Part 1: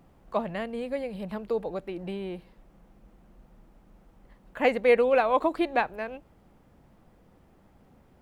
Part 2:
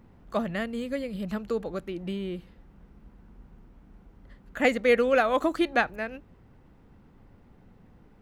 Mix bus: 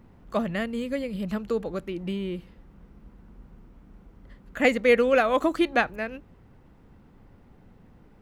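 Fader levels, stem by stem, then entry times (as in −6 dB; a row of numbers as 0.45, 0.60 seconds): −12.0, +1.5 decibels; 0.00, 0.00 seconds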